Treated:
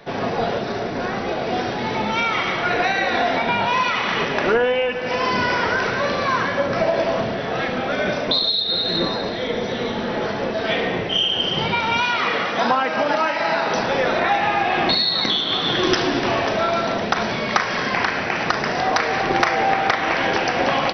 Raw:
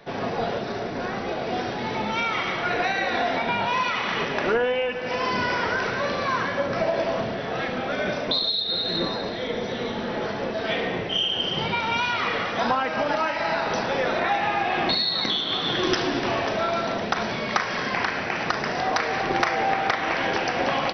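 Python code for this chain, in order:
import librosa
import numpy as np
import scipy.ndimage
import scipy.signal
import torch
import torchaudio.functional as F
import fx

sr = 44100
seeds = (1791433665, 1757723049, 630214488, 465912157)

y = fx.highpass(x, sr, hz=150.0, slope=12, at=(12.03, 13.77))
y = y * librosa.db_to_amplitude(4.5)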